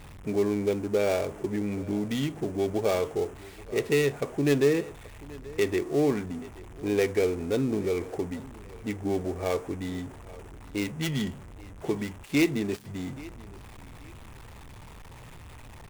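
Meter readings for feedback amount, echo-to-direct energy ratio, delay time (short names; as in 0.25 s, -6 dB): 28%, -20.0 dB, 0.831 s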